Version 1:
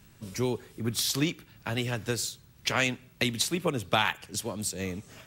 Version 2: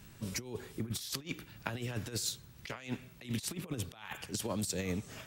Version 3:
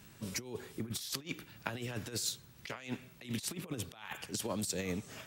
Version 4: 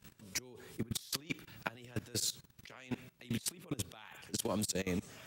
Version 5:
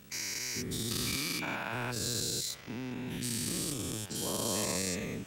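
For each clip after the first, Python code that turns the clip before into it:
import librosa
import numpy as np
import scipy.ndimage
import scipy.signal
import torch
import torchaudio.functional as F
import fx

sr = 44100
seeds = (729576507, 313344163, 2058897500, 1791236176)

y1 = fx.over_compress(x, sr, threshold_db=-34.0, ratio=-0.5)
y1 = y1 * librosa.db_to_amplitude(-3.5)
y2 = fx.low_shelf(y1, sr, hz=83.0, db=-10.5)
y3 = fx.level_steps(y2, sr, step_db=19)
y3 = y3 * librosa.db_to_amplitude(3.5)
y4 = fx.spec_dilate(y3, sr, span_ms=480)
y4 = y4 * librosa.db_to_amplitude(-6.0)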